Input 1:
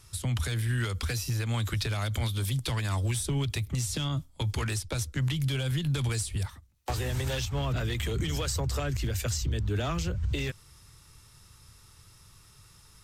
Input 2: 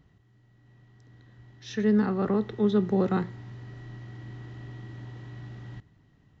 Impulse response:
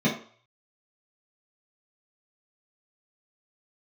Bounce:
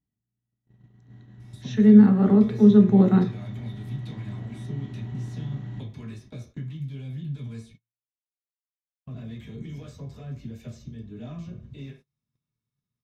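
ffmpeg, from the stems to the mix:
-filter_complex "[0:a]acompressor=threshold=-39dB:ratio=6,adelay=1400,volume=-13dB,asplit=3[link_01][link_02][link_03];[link_01]atrim=end=7.74,asetpts=PTS-STARTPTS,afade=type=out:start_time=7.736:duration=0.004:curve=hsin[link_04];[link_02]atrim=start=7.74:end=9.06,asetpts=PTS-STARTPTS,volume=0[link_05];[link_03]atrim=start=9.06,asetpts=PTS-STARTPTS,afade=type=in:duration=0.004:curve=hsin[link_06];[link_04][link_05][link_06]concat=n=3:v=0:a=1,asplit=2[link_07][link_08];[link_08]volume=-4dB[link_09];[1:a]bandreject=frequency=4900:width=5.6,aeval=exprs='val(0)+0.000631*(sin(2*PI*60*n/s)+sin(2*PI*2*60*n/s)/2+sin(2*PI*3*60*n/s)/3+sin(2*PI*4*60*n/s)/4+sin(2*PI*5*60*n/s)/5)':channel_layout=same,volume=-0.5dB,asplit=2[link_10][link_11];[link_11]volume=-17dB[link_12];[2:a]atrim=start_sample=2205[link_13];[link_09][link_12]amix=inputs=2:normalize=0[link_14];[link_14][link_13]afir=irnorm=-1:irlink=0[link_15];[link_07][link_10][link_15]amix=inputs=3:normalize=0,agate=range=-31dB:threshold=-48dB:ratio=16:detection=peak"

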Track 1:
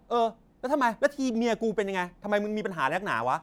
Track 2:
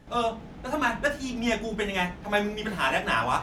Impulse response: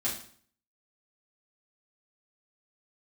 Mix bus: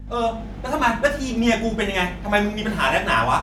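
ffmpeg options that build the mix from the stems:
-filter_complex "[0:a]volume=-1.5dB[link_01];[1:a]dynaudnorm=framelen=200:gausssize=3:maxgain=8.5dB,aeval=exprs='val(0)+0.0282*(sin(2*PI*50*n/s)+sin(2*PI*2*50*n/s)/2+sin(2*PI*3*50*n/s)/3+sin(2*PI*4*50*n/s)/4+sin(2*PI*5*50*n/s)/5)':channel_layout=same,adelay=1,volume=-4dB,asplit=2[link_02][link_03];[link_03]volume=-12dB[link_04];[2:a]atrim=start_sample=2205[link_05];[link_04][link_05]afir=irnorm=-1:irlink=0[link_06];[link_01][link_02][link_06]amix=inputs=3:normalize=0"

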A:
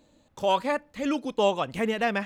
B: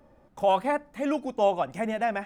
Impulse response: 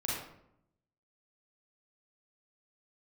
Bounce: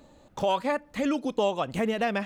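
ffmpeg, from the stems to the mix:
-filter_complex "[0:a]volume=2.5dB[link_01];[1:a]acompressor=threshold=-34dB:ratio=6,volume=0.5dB[link_02];[link_01][link_02]amix=inputs=2:normalize=0,acompressor=threshold=-26dB:ratio=2"

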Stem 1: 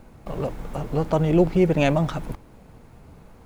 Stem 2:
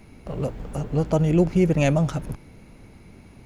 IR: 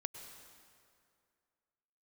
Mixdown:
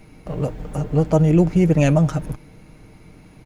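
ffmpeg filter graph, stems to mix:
-filter_complex "[0:a]volume=-12dB[link_01];[1:a]aecho=1:1:6.5:0.44,volume=1dB[link_02];[link_01][link_02]amix=inputs=2:normalize=0"

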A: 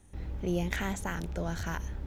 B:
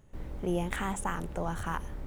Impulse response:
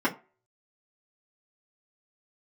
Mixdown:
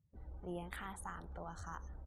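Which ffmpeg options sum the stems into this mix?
-filter_complex "[0:a]asoftclip=type=tanh:threshold=-21dB,acompressor=threshold=-42dB:ratio=6,volume=-2dB[link_01];[1:a]highpass=70,volume=-1,adelay=0.4,volume=-9.5dB,asplit=2[link_02][link_03];[link_03]apad=whole_len=91054[link_04];[link_01][link_04]sidechaingate=range=-33dB:threshold=-54dB:ratio=16:detection=peak[link_05];[link_05][link_02]amix=inputs=2:normalize=0,afftdn=noise_reduction=22:noise_floor=-59"

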